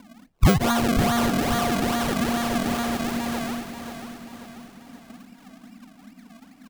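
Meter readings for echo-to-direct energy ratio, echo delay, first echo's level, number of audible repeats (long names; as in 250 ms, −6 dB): −7.5 dB, 536 ms, −8.5 dB, 4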